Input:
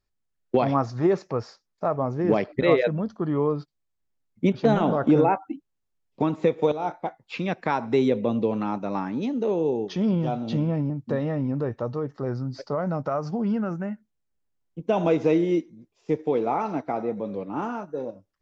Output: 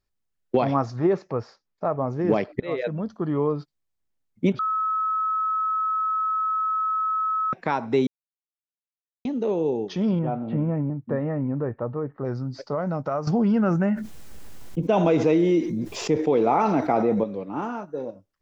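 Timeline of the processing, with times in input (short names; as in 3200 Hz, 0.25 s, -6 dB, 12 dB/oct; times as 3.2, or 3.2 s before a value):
0.96–2.08 LPF 3000 Hz 6 dB/oct
2.6–3.26 fade in equal-power, from -22 dB
4.59–7.53 bleep 1290 Hz -21.5 dBFS
8.07–9.25 mute
10.19–12.25 LPF 2100 Hz 24 dB/oct
13.27–17.24 fast leveller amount 70%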